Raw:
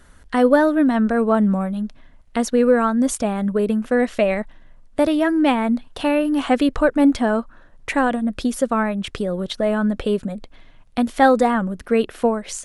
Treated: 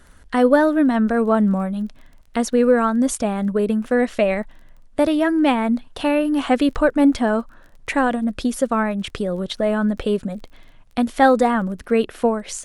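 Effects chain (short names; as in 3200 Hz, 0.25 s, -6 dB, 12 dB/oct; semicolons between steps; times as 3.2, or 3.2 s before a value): crackle 23/s -38 dBFS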